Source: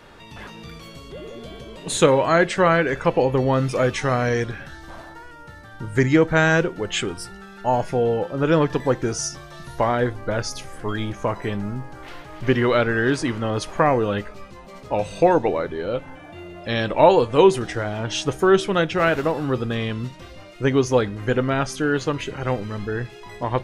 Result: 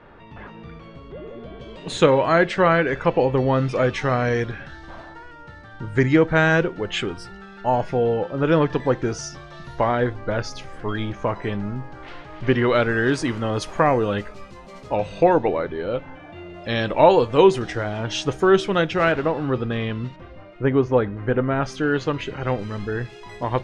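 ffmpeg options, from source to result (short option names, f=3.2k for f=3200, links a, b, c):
-af "asetnsamples=n=441:p=0,asendcmd='1.61 lowpass f 4400;12.75 lowpass f 9600;14.96 lowpass f 3900;16.54 lowpass f 6300;19.12 lowpass f 3300;20.16 lowpass f 1800;21.63 lowpass f 4500;22.59 lowpass f 8200',lowpass=1.9k"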